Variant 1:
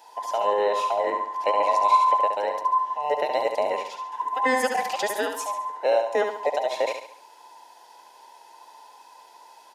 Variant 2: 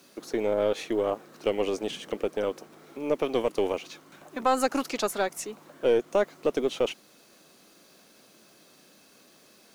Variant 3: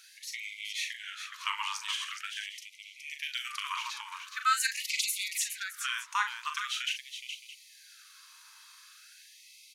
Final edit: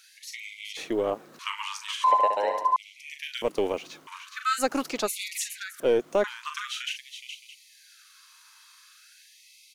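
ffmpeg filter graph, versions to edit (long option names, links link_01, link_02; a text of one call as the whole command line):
ffmpeg -i take0.wav -i take1.wav -i take2.wav -filter_complex "[1:a]asplit=4[link_01][link_02][link_03][link_04];[2:a]asplit=6[link_05][link_06][link_07][link_08][link_09][link_10];[link_05]atrim=end=0.772[link_11];[link_01]atrim=start=0.768:end=1.392[link_12];[link_06]atrim=start=1.388:end=2.042[link_13];[0:a]atrim=start=2.038:end=2.762[link_14];[link_07]atrim=start=2.758:end=3.422[link_15];[link_02]atrim=start=3.418:end=4.072[link_16];[link_08]atrim=start=4.068:end=4.64[link_17];[link_03]atrim=start=4.58:end=5.11[link_18];[link_09]atrim=start=5.05:end=5.802[link_19];[link_04]atrim=start=5.798:end=6.242[link_20];[link_10]atrim=start=6.238[link_21];[link_11][link_12]acrossfade=duration=0.004:curve1=hsin:curve2=hsin[link_22];[link_22][link_13]acrossfade=duration=0.004:curve1=hsin:curve2=hsin[link_23];[link_23][link_14]acrossfade=duration=0.004:curve1=hsin:curve2=hsin[link_24];[link_24][link_15]acrossfade=duration=0.004:curve1=hsin:curve2=hsin[link_25];[link_25][link_16]acrossfade=duration=0.004:curve1=hsin:curve2=hsin[link_26];[link_26][link_17]acrossfade=duration=0.004:curve1=hsin:curve2=hsin[link_27];[link_27][link_18]acrossfade=duration=0.06:curve1=tri:curve2=tri[link_28];[link_28][link_19]acrossfade=duration=0.06:curve1=tri:curve2=tri[link_29];[link_29][link_20]acrossfade=duration=0.004:curve1=hsin:curve2=hsin[link_30];[link_30][link_21]acrossfade=duration=0.004:curve1=hsin:curve2=hsin" out.wav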